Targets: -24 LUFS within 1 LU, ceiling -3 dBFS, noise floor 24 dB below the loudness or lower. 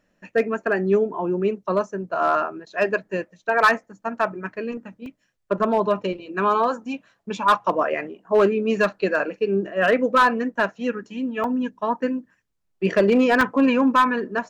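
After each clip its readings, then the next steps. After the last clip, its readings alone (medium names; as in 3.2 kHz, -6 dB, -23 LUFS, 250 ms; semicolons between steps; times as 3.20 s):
clipped samples 0.4%; clipping level -10.5 dBFS; dropouts 3; longest dropout 2.0 ms; loudness -22.0 LUFS; peak level -10.5 dBFS; loudness target -24.0 LUFS
-> clip repair -10.5 dBFS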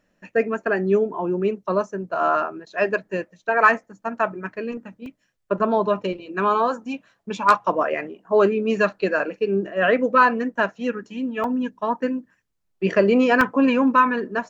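clipped samples 0.0%; dropouts 3; longest dropout 2.0 ms
-> interpolate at 5.06/11.44/13.41 s, 2 ms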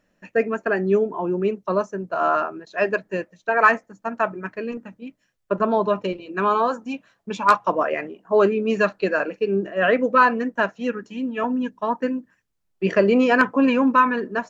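dropouts 0; loudness -21.5 LUFS; peak level -3.0 dBFS; loudness target -24.0 LUFS
-> trim -2.5 dB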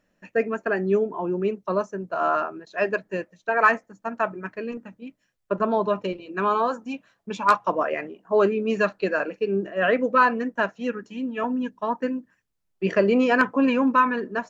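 loudness -24.0 LUFS; peak level -5.5 dBFS; noise floor -73 dBFS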